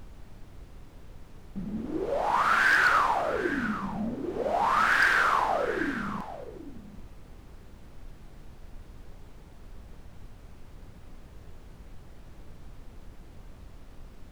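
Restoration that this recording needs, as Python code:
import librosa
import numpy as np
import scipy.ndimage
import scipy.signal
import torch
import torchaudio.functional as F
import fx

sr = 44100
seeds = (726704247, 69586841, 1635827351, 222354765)

y = fx.fix_declip(x, sr, threshold_db=-16.0)
y = fx.noise_reduce(y, sr, print_start_s=7.32, print_end_s=7.82, reduce_db=25.0)
y = fx.fix_echo_inverse(y, sr, delay_ms=790, level_db=-13.0)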